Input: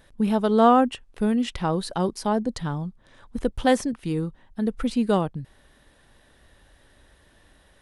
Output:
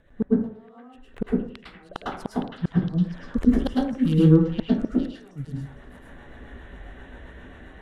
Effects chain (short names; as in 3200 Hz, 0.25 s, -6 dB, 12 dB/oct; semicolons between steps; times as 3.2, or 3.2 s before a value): Wiener smoothing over 9 samples; spectral gain 3.49–4.2, 220–2700 Hz -10 dB; dynamic EQ 410 Hz, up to +4 dB, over -35 dBFS, Q 1.7; AGC gain up to 9.5 dB; rotary speaker horn 7.5 Hz; flipped gate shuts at -13 dBFS, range -42 dB; delay with a stepping band-pass 0.461 s, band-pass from 2500 Hz, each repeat 0.7 oct, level -2 dB; plate-style reverb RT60 0.55 s, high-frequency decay 0.4×, pre-delay 95 ms, DRR -5.5 dB